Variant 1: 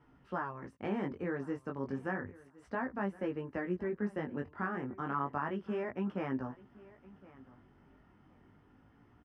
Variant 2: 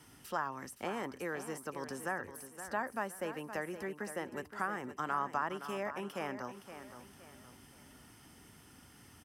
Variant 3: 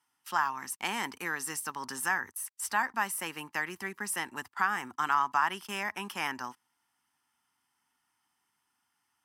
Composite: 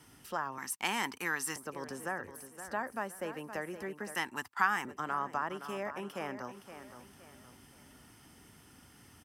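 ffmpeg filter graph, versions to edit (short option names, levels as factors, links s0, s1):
-filter_complex "[2:a]asplit=2[s0][s1];[1:a]asplit=3[s2][s3][s4];[s2]atrim=end=0.582[s5];[s0]atrim=start=0.578:end=1.562[s6];[s3]atrim=start=1.558:end=4.152[s7];[s1]atrim=start=4.148:end=4.852[s8];[s4]atrim=start=4.848[s9];[s5][s6]acrossfade=d=0.004:c1=hsin:c2=hsin[s10];[s10][s7]acrossfade=d=0.004:c1=hsin:c2=hsin[s11];[s11][s8]acrossfade=d=0.004:c1=hsin:c2=hsin[s12];[s12][s9]acrossfade=d=0.004:c1=hsin:c2=hsin"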